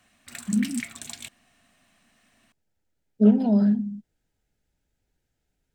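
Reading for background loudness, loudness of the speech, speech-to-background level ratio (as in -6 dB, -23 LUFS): -37.5 LUFS, -22.0 LUFS, 15.5 dB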